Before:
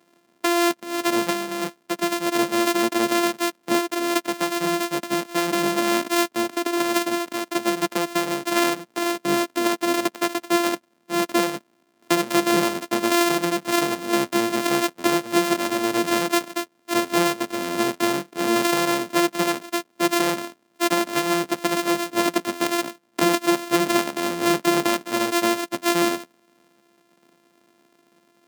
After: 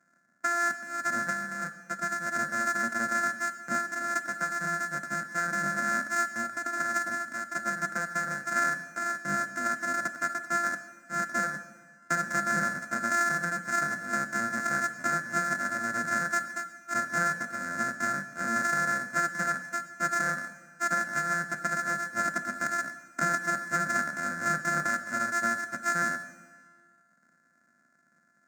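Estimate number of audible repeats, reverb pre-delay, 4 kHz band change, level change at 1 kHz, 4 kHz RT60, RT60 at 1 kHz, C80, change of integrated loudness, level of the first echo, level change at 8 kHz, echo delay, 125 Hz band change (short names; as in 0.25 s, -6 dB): none, 4 ms, -18.5 dB, -5.0 dB, 1.4 s, 1.5 s, 12.0 dB, -7.0 dB, none, -8.5 dB, none, -5.5 dB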